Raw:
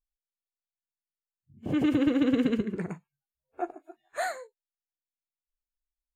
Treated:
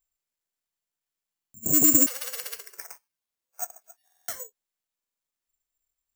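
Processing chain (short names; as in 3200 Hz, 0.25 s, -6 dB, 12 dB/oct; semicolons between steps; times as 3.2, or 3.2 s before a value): 2.06–4.4 Bessel high-pass 1000 Hz, order 8; careless resampling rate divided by 6×, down none, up zero stuff; stuck buffer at 1.31/4.05/4.95, samples 2048, times 4; gain -1.5 dB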